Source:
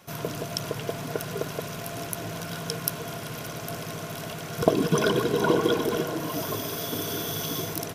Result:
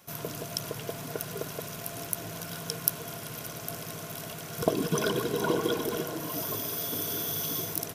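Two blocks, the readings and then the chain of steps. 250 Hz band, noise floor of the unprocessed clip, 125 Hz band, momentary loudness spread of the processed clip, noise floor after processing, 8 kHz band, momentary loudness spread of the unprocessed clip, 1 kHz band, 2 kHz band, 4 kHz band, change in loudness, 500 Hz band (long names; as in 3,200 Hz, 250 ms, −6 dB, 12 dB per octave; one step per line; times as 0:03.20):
−5.5 dB, −37 dBFS, −5.5 dB, 10 LU, −41 dBFS, 0.0 dB, 12 LU, −5.5 dB, −5.0 dB, −3.5 dB, −3.5 dB, −5.5 dB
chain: high-shelf EQ 7,400 Hz +10 dB
level −5.5 dB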